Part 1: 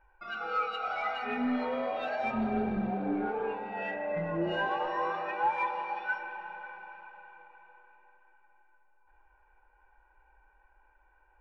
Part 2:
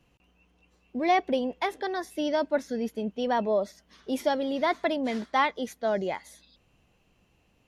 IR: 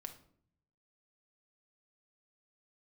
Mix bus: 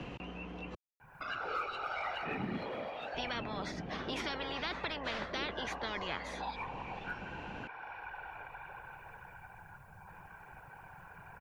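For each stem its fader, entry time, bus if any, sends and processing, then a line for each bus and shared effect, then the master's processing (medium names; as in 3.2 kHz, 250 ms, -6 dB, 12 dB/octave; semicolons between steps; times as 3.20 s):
-4.5 dB, 1.00 s, no send, treble shelf 10 kHz +7 dB; whisper effect; auto duck -9 dB, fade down 0.85 s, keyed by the second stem
-7.0 dB, 0.00 s, muted 0.75–3.14 s, no send, Bessel low-pass 1.7 kHz, order 2; spectrum-flattening compressor 10:1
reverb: none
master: three bands compressed up and down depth 70%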